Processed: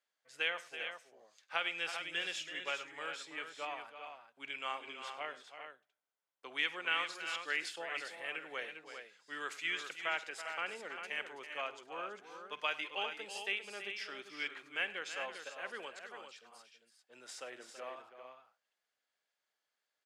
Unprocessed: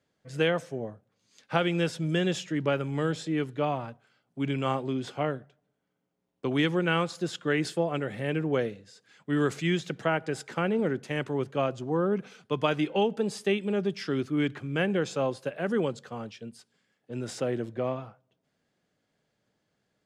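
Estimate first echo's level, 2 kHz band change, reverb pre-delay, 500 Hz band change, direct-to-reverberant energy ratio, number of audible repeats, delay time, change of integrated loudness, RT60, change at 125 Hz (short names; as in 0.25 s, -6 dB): -18.5 dB, -2.5 dB, none, -18.5 dB, none, 4, 48 ms, -10.5 dB, none, under -35 dB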